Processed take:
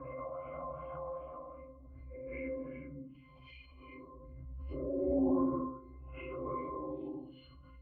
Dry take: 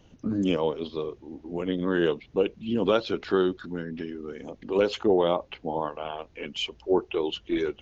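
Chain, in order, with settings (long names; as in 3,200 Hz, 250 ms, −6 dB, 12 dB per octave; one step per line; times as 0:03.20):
noise gate −43 dBFS, range −27 dB
extreme stretch with random phases 5.3×, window 0.10 s, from 0:05.94
auto-filter low-pass sine 2.6 Hz 890–2,200 Hz
resonances in every octave C, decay 0.33 s
background raised ahead of every attack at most 24 dB per second
level +6.5 dB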